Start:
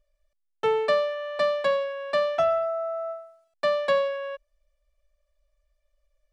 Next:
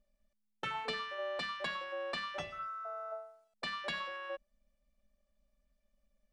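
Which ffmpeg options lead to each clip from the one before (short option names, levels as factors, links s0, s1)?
-af "afftfilt=real='re*lt(hypot(re,im),0.282)':imag='im*lt(hypot(re,im),0.282)':win_size=1024:overlap=0.75,tremolo=f=210:d=0.4,volume=0.708"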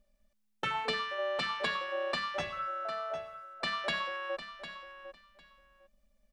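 -af "aecho=1:1:753|1506:0.266|0.0452,volume=1.78"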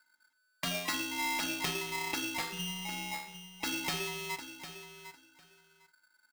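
-filter_complex "[0:a]asplit=2[s0][s1];[s1]adelay=46,volume=0.224[s2];[s0][s2]amix=inputs=2:normalize=0,aeval=exprs='val(0)*sgn(sin(2*PI*1500*n/s))':c=same,volume=0.841"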